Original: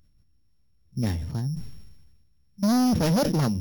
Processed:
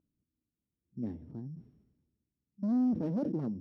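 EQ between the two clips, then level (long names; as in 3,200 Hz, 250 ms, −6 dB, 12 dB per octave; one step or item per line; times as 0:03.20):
resonant band-pass 300 Hz, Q 2
−4.5 dB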